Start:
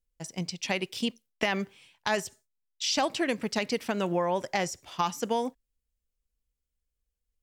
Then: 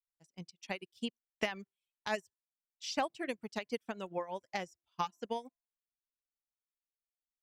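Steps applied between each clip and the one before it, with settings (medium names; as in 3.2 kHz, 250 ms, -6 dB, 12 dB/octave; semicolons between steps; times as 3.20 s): de-hum 342.7 Hz, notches 5; reverb removal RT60 0.77 s; upward expansion 2.5:1, over -42 dBFS; trim -4 dB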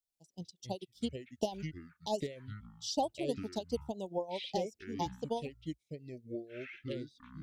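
inverse Chebyshev band-stop 1.2–2.4 kHz, stop band 40 dB; ever faster or slower copies 86 ms, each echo -7 st, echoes 3, each echo -6 dB; trim +2.5 dB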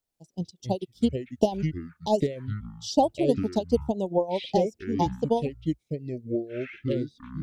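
tilt shelf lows +5 dB, about 1.1 kHz; trim +8.5 dB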